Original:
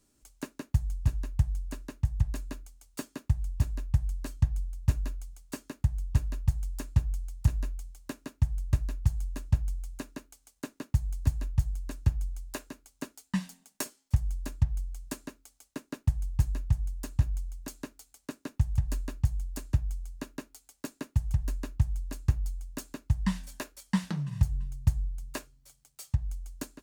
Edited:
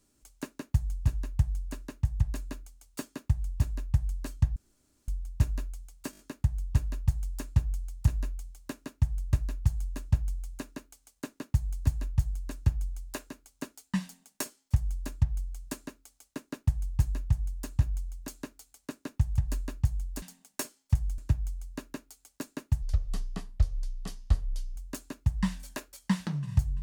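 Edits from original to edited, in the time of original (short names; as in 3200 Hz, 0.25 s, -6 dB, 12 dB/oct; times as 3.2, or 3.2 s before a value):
4.56 insert room tone 0.52 s
5.59 stutter 0.02 s, 5 plays
13.43–14.39 copy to 19.62
21.26–22.6 speed 69%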